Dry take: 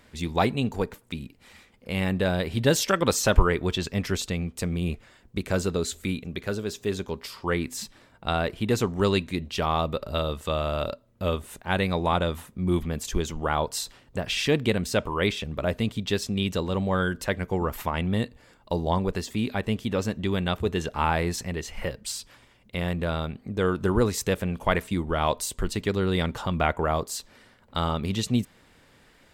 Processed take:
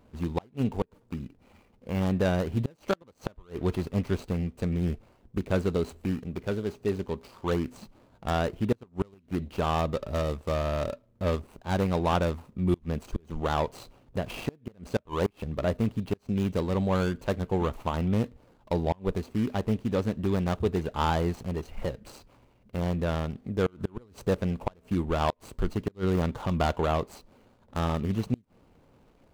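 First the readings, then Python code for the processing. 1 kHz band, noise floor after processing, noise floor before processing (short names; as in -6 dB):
-3.5 dB, -63 dBFS, -58 dBFS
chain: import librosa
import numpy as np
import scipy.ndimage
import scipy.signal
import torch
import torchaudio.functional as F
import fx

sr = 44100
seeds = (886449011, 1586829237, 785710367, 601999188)

y = scipy.ndimage.median_filter(x, 25, mode='constant')
y = fx.gate_flip(y, sr, shuts_db=-14.0, range_db=-32)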